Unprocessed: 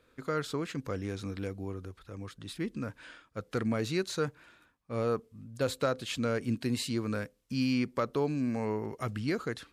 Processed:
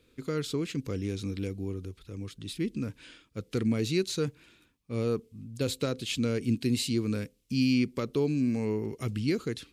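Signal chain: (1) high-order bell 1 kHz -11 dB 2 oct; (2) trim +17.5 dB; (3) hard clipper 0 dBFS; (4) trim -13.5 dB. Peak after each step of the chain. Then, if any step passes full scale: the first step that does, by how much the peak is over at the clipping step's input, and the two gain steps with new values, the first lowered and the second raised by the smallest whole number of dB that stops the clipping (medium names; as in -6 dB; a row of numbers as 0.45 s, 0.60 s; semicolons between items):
-20.0 dBFS, -2.5 dBFS, -2.5 dBFS, -16.0 dBFS; nothing clips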